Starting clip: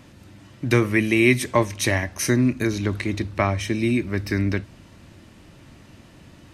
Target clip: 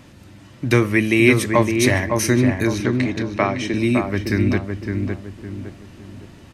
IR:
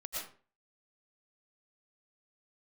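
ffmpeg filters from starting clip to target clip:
-filter_complex "[0:a]asettb=1/sr,asplit=3[link_01][link_02][link_03];[link_01]atrim=end=2.804[link_04];[link_02]atrim=start=2.8:end=3.74,asetpts=PTS-STARTPTS,afade=type=in:duration=0.004:curve=qsin,afade=type=out:start_time=0.936:duration=0.004:curve=qsin,highpass=220,lowpass=6500[link_05];[link_03]atrim=start=3.736[link_06];[link_04][link_05]acrossfade=duration=0.004:curve1=hsin:curve2=qsin[link_07];[link_07][link_06]acrossfade=duration=0.004:curve1=qsin:curve2=hsin,asplit=2[link_08][link_09];[link_09]adelay=560,lowpass=frequency=1400:poles=1,volume=-4dB,asplit=2[link_10][link_11];[link_11]adelay=560,lowpass=frequency=1400:poles=1,volume=0.39,asplit=2[link_12][link_13];[link_13]adelay=560,lowpass=frequency=1400:poles=1,volume=0.39,asplit=2[link_14][link_15];[link_15]adelay=560,lowpass=frequency=1400:poles=1,volume=0.39,asplit=2[link_16][link_17];[link_17]adelay=560,lowpass=frequency=1400:poles=1,volume=0.39[link_18];[link_08][link_10][link_12][link_14][link_16][link_18]amix=inputs=6:normalize=0,volume=2.5dB"

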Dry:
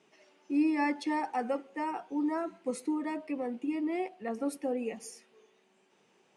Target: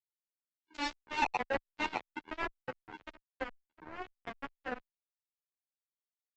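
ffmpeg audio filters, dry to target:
ffmpeg -i in.wav -filter_complex "[0:a]aeval=exprs='val(0)+0.5*0.00562*sgn(val(0))':channel_layout=same,equalizer=frequency=1250:width_type=o:width=0.33:gain=-7,equalizer=frequency=2500:width_type=o:width=0.33:gain=12,equalizer=frequency=5000:width_type=o:width=0.33:gain=7,alimiter=level_in=3dB:limit=-24dB:level=0:latency=1:release=14,volume=-3dB,equalizer=frequency=930:width_type=o:width=0.91:gain=7,aecho=1:1:5.7:0.63,afwtdn=0.0178,asplit=2[link_01][link_02];[link_02]asplit=4[link_03][link_04][link_05][link_06];[link_03]adelay=459,afreqshift=74,volume=-17.5dB[link_07];[link_04]adelay=918,afreqshift=148,volume=-23.3dB[link_08];[link_05]adelay=1377,afreqshift=222,volume=-29.2dB[link_09];[link_06]adelay=1836,afreqshift=296,volume=-35dB[link_10];[link_07][link_08][link_09][link_10]amix=inputs=4:normalize=0[link_11];[link_01][link_11]amix=inputs=2:normalize=0,acontrast=45,bandreject=frequency=190.1:width_type=h:width=4,bandreject=frequency=380.2:width_type=h:width=4,bandreject=frequency=570.3:width_type=h:width=4,bandreject=frequency=760.4:width_type=h:width=4,afftfilt=real='re*gte(hypot(re,im),0.0398)':imag='im*gte(hypot(re,im),0.0398)':win_size=1024:overlap=0.75,aresample=16000,acrusher=bits=2:mix=0:aa=0.5,aresample=44100,asplit=2[link_12][link_13];[link_13]adelay=10.8,afreqshift=-1.2[link_14];[link_12][link_14]amix=inputs=2:normalize=1,volume=1dB" out.wav

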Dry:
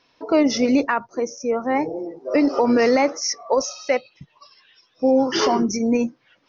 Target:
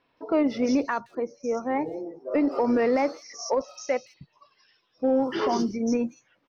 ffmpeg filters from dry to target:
ffmpeg -i in.wav -filter_complex "[0:a]highshelf=frequency=2400:gain=-6,asplit=2[link_01][link_02];[link_02]volume=14dB,asoftclip=hard,volume=-14dB,volume=-10dB[link_03];[link_01][link_03]amix=inputs=2:normalize=0,acrossover=split=4200[link_04][link_05];[link_05]adelay=170[link_06];[link_04][link_06]amix=inputs=2:normalize=0,volume=-7.5dB" out.wav

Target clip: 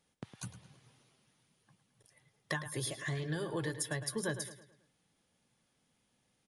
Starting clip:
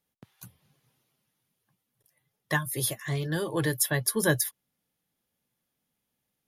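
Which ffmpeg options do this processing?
ffmpeg -i in.wav -filter_complex "[0:a]aresample=22050,aresample=44100,acompressor=threshold=-44dB:ratio=4,asplit=2[link_01][link_02];[link_02]adelay=108,lowpass=frequency=4900:poles=1,volume=-11dB,asplit=2[link_03][link_04];[link_04]adelay=108,lowpass=frequency=4900:poles=1,volume=0.44,asplit=2[link_05][link_06];[link_06]adelay=108,lowpass=frequency=4900:poles=1,volume=0.44,asplit=2[link_07][link_08];[link_08]adelay=108,lowpass=frequency=4900:poles=1,volume=0.44,asplit=2[link_09][link_10];[link_10]adelay=108,lowpass=frequency=4900:poles=1,volume=0.44[link_11];[link_03][link_05][link_07][link_09][link_11]amix=inputs=5:normalize=0[link_12];[link_01][link_12]amix=inputs=2:normalize=0,volume=6.5dB" out.wav

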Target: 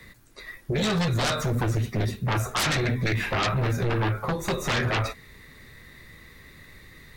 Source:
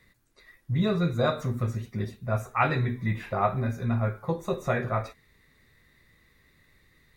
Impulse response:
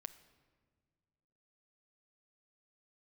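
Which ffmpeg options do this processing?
-filter_complex "[0:a]acrossover=split=120|1200[link_01][link_02][link_03];[link_02]acompressor=threshold=-34dB:ratio=6[link_04];[link_01][link_04][link_03]amix=inputs=3:normalize=0,aeval=exprs='0.188*sin(PI/2*6.31*val(0)/0.188)':channel_layout=same,volume=-6.5dB"

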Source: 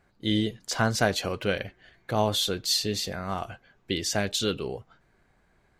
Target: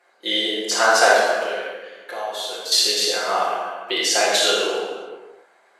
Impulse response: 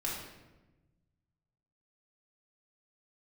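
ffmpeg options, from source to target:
-filter_complex "[0:a]highpass=frequency=440:width=0.5412,highpass=frequency=440:width=1.3066,asettb=1/sr,asplit=3[link_01][link_02][link_03];[link_01]atrim=end=1.094[link_04];[link_02]atrim=start=1.09:end=2.72,asetpts=PTS-STARTPTS,afade=type=in:duration=0.004:curve=qsin,afade=type=out:start_time=1.626:duration=0.004:curve=qsin,acompressor=threshold=-42dB:ratio=3[link_05];[link_03]atrim=start=2.716[link_06];[link_04][link_05]acrossfade=duration=0.004:curve1=hsin:curve2=qsin[link_07];[link_07][link_06]acrossfade=duration=0.004:curve1=qsin:curve2=hsin[link_08];[1:a]atrim=start_sample=2205,afade=type=out:start_time=0.44:duration=0.01,atrim=end_sample=19845,asetrate=25137,aresample=44100[link_09];[link_08][link_09]afir=irnorm=-1:irlink=0,volume=5dB"

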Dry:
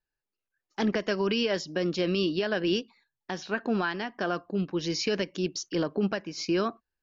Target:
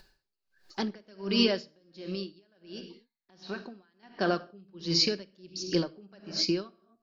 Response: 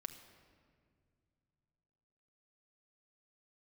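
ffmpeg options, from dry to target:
-filter_complex "[0:a]asettb=1/sr,asplit=3[link_01][link_02][link_03];[link_01]atrim=end=1.674[link_04];[link_02]atrim=start=1.67:end=4.03,asetpts=PTS-STARTPTS,afade=type=in:duration=0.004:curve=qsin,afade=type=out:start_time=2.356:duration=0.004:curve=qsin,acompressor=threshold=-37dB:ratio=6[link_05];[link_03]atrim=start=4.026[link_06];[link_04][link_05]acrossfade=duration=0.004:curve1=hsin:curve2=qsin[link_07];[link_07][link_06]acrossfade=duration=0.004:curve1=qsin:curve2=hsin,equalizer=frequency=4500:width=2.1:gain=14.5[link_08];[1:a]atrim=start_sample=2205,afade=type=out:start_time=0.31:duration=0.01,atrim=end_sample=14112[link_09];[link_08][link_09]afir=irnorm=-1:irlink=0,acompressor=mode=upward:threshold=-44dB:ratio=2.5,highshelf=frequency=2200:gain=-8,aeval=exprs='val(0)*pow(10,-32*(0.5-0.5*cos(2*PI*1.4*n/s))/20)':channel_layout=same,volume=7.5dB"

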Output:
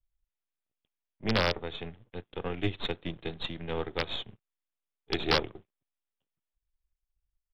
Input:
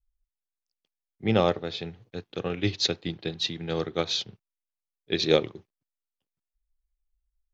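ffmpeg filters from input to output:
ffmpeg -i in.wav -af "aeval=exprs='if(lt(val(0),0),0.251*val(0),val(0))':channel_layout=same,aresample=8000,aresample=44100,aresample=11025,aeval=exprs='(mod(5.31*val(0)+1,2)-1)/5.31':channel_layout=same,aresample=44100,aeval=exprs='0.282*(cos(1*acos(clip(val(0)/0.282,-1,1)))-cos(1*PI/2))+0.00447*(cos(8*acos(clip(val(0)/0.282,-1,1)))-cos(8*PI/2))':channel_layout=same" out.wav

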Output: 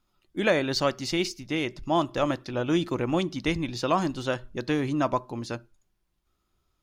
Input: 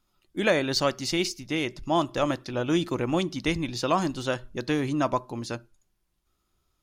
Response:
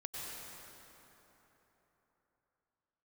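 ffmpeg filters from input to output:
-af "equalizer=frequency=11000:width_type=o:width=1.8:gain=-5"

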